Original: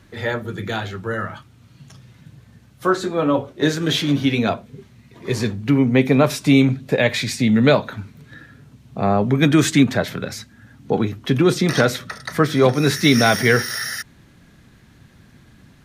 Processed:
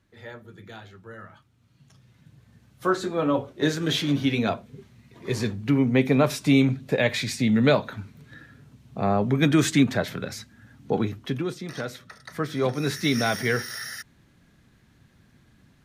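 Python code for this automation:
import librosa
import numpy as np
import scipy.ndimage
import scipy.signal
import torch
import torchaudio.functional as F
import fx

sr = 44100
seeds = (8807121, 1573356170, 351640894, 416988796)

y = fx.gain(x, sr, db=fx.line((1.16, -17.5), (2.88, -5.0), (11.15, -5.0), (11.59, -17.5), (12.76, -9.0)))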